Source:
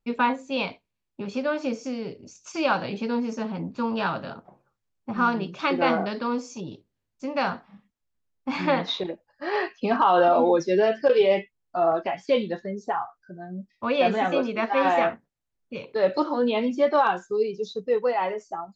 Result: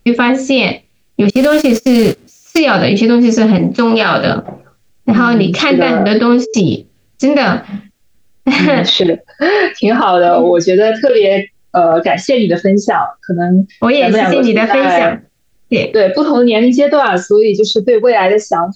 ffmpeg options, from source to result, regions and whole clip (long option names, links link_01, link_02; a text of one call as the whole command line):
ffmpeg -i in.wav -filter_complex "[0:a]asettb=1/sr,asplit=3[link_01][link_02][link_03];[link_01]atrim=end=1.304[link_04];[link_02]atrim=start=1.3:end=2.58,asetpts=PTS-STARTPTS,afade=type=in:duration=0.004:curve=qsin,afade=type=out:start_time=1.276:duration=0.004:curve=qsin,aeval=exprs='val(0)+0.5*0.0188*sgn(val(0))':channel_layout=same,agate=range=-34dB:threshold=-32dB:ratio=16:release=100:detection=peak[link_05];[link_03]atrim=start=2.576[link_06];[link_04][link_05]acrossfade=duration=0.004:curve1=hsin:curve2=qsin[link_07];[link_07][link_06]acrossfade=duration=0.004:curve1=qsin:curve2=hsin,asettb=1/sr,asplit=3[link_08][link_09][link_10];[link_08]atrim=end=3.584[link_11];[link_09]atrim=start=3.58:end=4.26,asetpts=PTS-STARTPTS,afade=type=in:duration=0.004:curve=qsin,afade=type=out:start_time=0.676:duration=0.004:curve=qsin,agate=range=-33dB:threshold=-43dB:ratio=3:release=100:detection=peak,highpass=frequency=460:poles=1,asplit=2[link_12][link_13];[link_13]adelay=47,volume=-12.5dB[link_14];[link_12][link_14]amix=inputs=2:normalize=0,atrim=end_sample=29988[link_15];[link_10]atrim=start=4.256[link_16];[link_11][link_15]acrossfade=duration=0.004:curve1=hsin:curve2=qsin[link_17];[link_17][link_16]acrossfade=duration=0.004:curve1=qsin:curve2=hsin,asettb=1/sr,asplit=3[link_18][link_19][link_20];[link_18]atrim=end=5.994[link_21];[link_19]atrim=start=5.99:end=6.54,asetpts=PTS-STARTPTS,afade=type=in:duration=0.004:curve=qsin,afade=type=out:start_time=0.546:duration=0.004:curve=qsin,lowpass=5100,agate=range=-39dB:threshold=-39dB:ratio=16:release=100:detection=peak,aeval=exprs='val(0)+0.00501*sin(2*PI*440*n/s)':channel_layout=same[link_22];[link_20]atrim=start=6.536[link_23];[link_21][link_22]acrossfade=duration=0.004:curve1=hsin:curve2=qsin[link_24];[link_24][link_23]acrossfade=duration=0.004:curve1=qsin:curve2=hsin,equalizer=frequency=990:width_type=o:width=0.62:gain=-11.5,acompressor=threshold=-29dB:ratio=6,alimiter=level_in=28dB:limit=-1dB:release=50:level=0:latency=1,volume=-1dB" out.wav